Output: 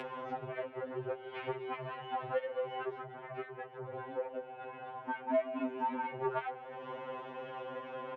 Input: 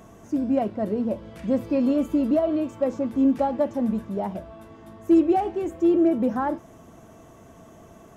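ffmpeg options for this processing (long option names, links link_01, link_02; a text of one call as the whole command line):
ffmpeg -i in.wav -filter_complex "[0:a]aeval=exprs='val(0)+0.01*(sin(2*PI*50*n/s)+sin(2*PI*2*50*n/s)/2+sin(2*PI*3*50*n/s)/3+sin(2*PI*4*50*n/s)/4+sin(2*PI*5*50*n/s)/5)':channel_layout=same,asoftclip=type=tanh:threshold=-24dB,highpass=frequency=490:width_type=q:width=0.5412,highpass=frequency=490:width_type=q:width=1.307,lowpass=frequency=3300:width_type=q:width=0.5176,lowpass=frequency=3300:width_type=q:width=0.7071,lowpass=frequency=3300:width_type=q:width=1.932,afreqshift=-110,acompressor=mode=upward:threshold=-38dB:ratio=2.5,aecho=1:1:144|288|432|576:0.0944|0.0481|0.0246|0.0125,acompressor=threshold=-38dB:ratio=10,asettb=1/sr,asplit=3[link_01][link_02][link_03];[link_01]atrim=end=3.034[link_04];[link_02]atrim=start=3.03:end=5.35,asetpts=PTS-STARTPTS,afade=type=in:duration=0.004:curve=qsin,afade=type=out:start_time=2.316:duration=0.004:curve=qsin,highshelf=frequency=2500:gain=-10.5[link_05];[link_03]atrim=start=5.346[link_06];[link_04][link_05]acrossfade=duration=0.004:curve1=hsin:curve2=qsin[link_07];[link_07][link_06]acrossfade=duration=0.004:curve1=qsin:curve2=hsin,afftfilt=real='re*2.45*eq(mod(b,6),0)':imag='im*2.45*eq(mod(b,6),0)':win_size=2048:overlap=0.75,volume=7dB" out.wav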